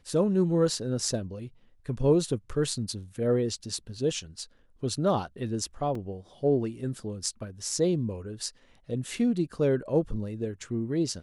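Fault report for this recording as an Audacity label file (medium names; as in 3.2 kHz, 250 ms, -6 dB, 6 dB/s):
5.950000	5.950000	dropout 3.4 ms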